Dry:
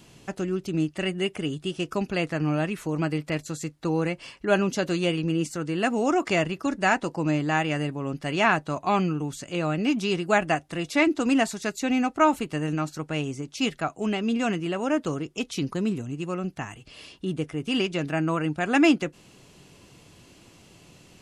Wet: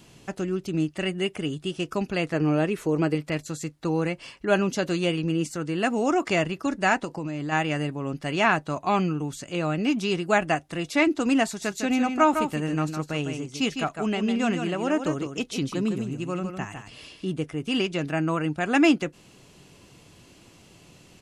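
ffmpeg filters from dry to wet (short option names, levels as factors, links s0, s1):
-filter_complex "[0:a]asettb=1/sr,asplit=3[s0][s1][s2];[s0]atrim=end=2.334[s3];[s1]atrim=start=2.33:end=3.15,asetpts=PTS-STARTPTS,afade=t=in:d=0.004:c=qsin,afade=t=out:st=0.816:d=0.004:c=qsin,equalizer=f=420:t=o:w=0.77:g=8.5[s4];[s2]atrim=start=3.146[s5];[s3][s4]acrossfade=d=0.004:c1=hsin:c2=qsin[s6];[s6][s5]acrossfade=d=0.004:c1=qsin:c2=hsin,asplit=3[s7][s8][s9];[s7]afade=t=out:st=7.04:d=0.02[s10];[s8]acompressor=threshold=0.0447:ratio=6:attack=3.2:release=140:knee=1:detection=peak,afade=t=in:st=7.04:d=0.02,afade=t=out:st=7.51:d=0.02[s11];[s9]afade=t=in:st=7.51:d=0.02[s12];[s10][s11][s12]amix=inputs=3:normalize=0,asplit=3[s13][s14][s15];[s13]afade=t=out:st=11.61:d=0.02[s16];[s14]aecho=1:1:155:0.447,afade=t=in:st=11.61:d=0.02,afade=t=out:st=17.35:d=0.02[s17];[s15]afade=t=in:st=17.35:d=0.02[s18];[s16][s17][s18]amix=inputs=3:normalize=0"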